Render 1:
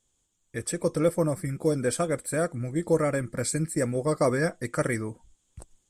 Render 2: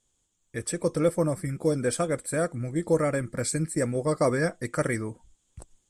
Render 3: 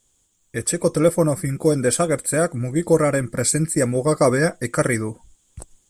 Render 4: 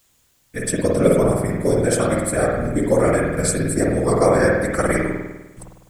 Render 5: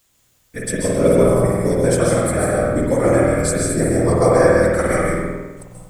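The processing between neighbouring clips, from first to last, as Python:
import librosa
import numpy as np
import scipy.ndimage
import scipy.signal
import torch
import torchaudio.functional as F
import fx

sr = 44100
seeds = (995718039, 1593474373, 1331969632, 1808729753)

y1 = scipy.signal.sosfilt(scipy.signal.butter(4, 12000.0, 'lowpass', fs=sr, output='sos'), x)
y2 = fx.high_shelf(y1, sr, hz=11000.0, db=11.0)
y2 = F.gain(torch.from_numpy(y2), 7.0).numpy()
y3 = fx.whisperise(y2, sr, seeds[0])
y3 = fx.rev_spring(y3, sr, rt60_s=1.1, pass_ms=(50,), chirp_ms=75, drr_db=-2.0)
y3 = fx.quant_dither(y3, sr, seeds[1], bits=10, dither='triangular')
y3 = F.gain(torch.from_numpy(y3), -2.5).numpy()
y4 = fx.rev_plate(y3, sr, seeds[2], rt60_s=0.64, hf_ratio=0.8, predelay_ms=120, drr_db=0.0)
y4 = F.gain(torch.from_numpy(y4), -1.5).numpy()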